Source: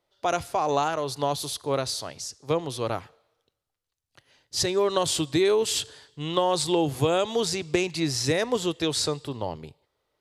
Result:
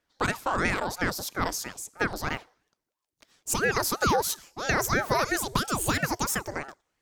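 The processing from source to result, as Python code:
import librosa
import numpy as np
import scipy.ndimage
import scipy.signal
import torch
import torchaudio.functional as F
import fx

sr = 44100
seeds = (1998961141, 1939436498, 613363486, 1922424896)

y = fx.speed_glide(x, sr, from_pct=116, to_pct=175)
y = fx.ring_lfo(y, sr, carrier_hz=610.0, swing_pct=80, hz=3.0)
y = y * 10.0 ** (1.0 / 20.0)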